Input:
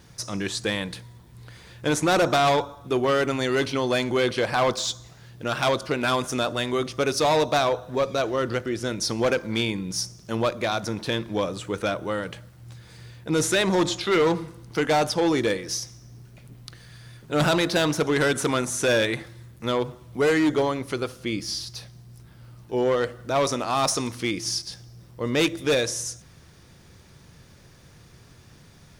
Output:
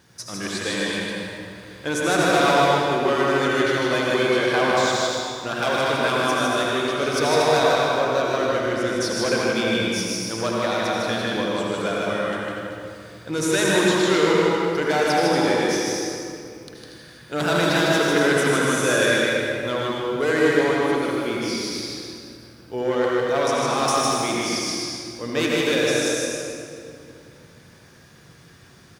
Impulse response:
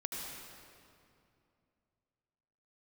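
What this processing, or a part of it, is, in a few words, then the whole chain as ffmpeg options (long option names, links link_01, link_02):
stadium PA: -filter_complex "[0:a]highpass=frequency=170:poles=1,equalizer=frequency=1600:width_type=o:width=0.22:gain=5,aecho=1:1:154.5|236.2:0.708|0.355[link_01];[1:a]atrim=start_sample=2205[link_02];[link_01][link_02]afir=irnorm=-1:irlink=0"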